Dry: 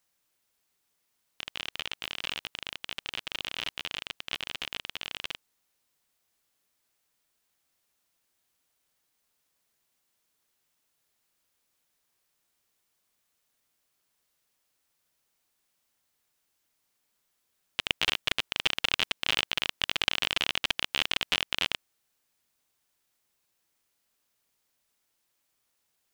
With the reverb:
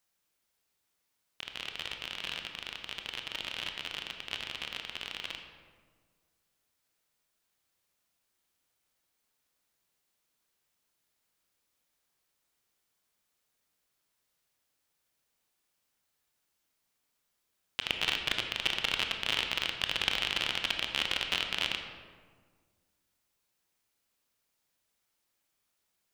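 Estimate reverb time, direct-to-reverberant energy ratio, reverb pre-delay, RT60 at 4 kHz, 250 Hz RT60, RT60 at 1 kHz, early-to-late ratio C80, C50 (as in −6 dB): 1.6 s, 4.0 dB, 22 ms, 0.90 s, 1.9 s, 1.5 s, 7.0 dB, 5.5 dB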